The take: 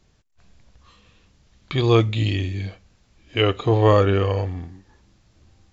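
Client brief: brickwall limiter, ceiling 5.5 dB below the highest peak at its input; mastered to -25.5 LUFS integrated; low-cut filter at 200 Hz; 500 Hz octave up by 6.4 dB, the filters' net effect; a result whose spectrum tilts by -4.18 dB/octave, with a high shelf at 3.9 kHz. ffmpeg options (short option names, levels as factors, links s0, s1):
-af "highpass=200,equalizer=f=500:t=o:g=7.5,highshelf=f=3900:g=4,volume=0.473,alimiter=limit=0.237:level=0:latency=1"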